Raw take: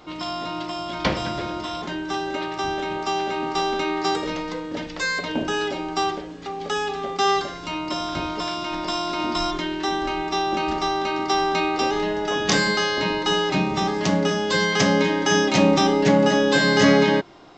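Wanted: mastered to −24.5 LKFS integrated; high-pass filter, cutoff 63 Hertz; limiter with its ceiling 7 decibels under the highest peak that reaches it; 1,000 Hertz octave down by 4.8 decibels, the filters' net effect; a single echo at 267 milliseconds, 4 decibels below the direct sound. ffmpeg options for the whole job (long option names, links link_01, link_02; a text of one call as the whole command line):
ffmpeg -i in.wav -af "highpass=63,equalizer=frequency=1000:width_type=o:gain=-6.5,alimiter=limit=-11.5dB:level=0:latency=1,aecho=1:1:267:0.631,volume=-1.5dB" out.wav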